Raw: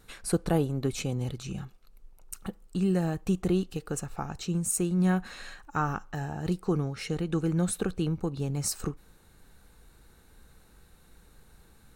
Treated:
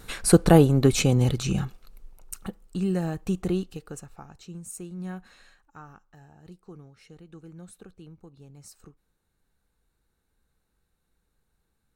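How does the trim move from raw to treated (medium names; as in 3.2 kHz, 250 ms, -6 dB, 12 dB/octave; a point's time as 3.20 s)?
1.59 s +10.5 dB
2.61 s 0 dB
3.53 s 0 dB
4.26 s -11 dB
5.34 s -11 dB
5.85 s -18 dB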